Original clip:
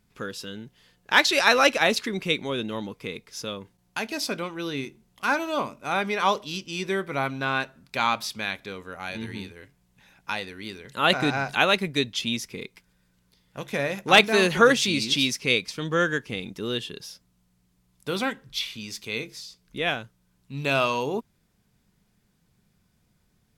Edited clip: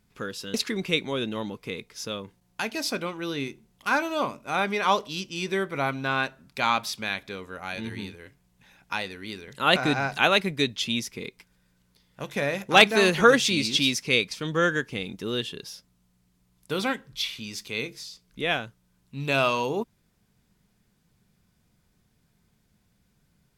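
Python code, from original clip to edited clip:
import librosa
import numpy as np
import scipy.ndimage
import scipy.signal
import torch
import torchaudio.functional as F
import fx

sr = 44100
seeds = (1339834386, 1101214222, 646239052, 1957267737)

y = fx.edit(x, sr, fx.cut(start_s=0.54, length_s=1.37), tone=tone)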